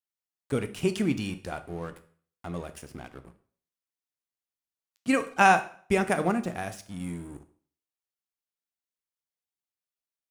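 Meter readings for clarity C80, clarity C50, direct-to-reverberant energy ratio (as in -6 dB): 18.5 dB, 14.5 dB, 10.0 dB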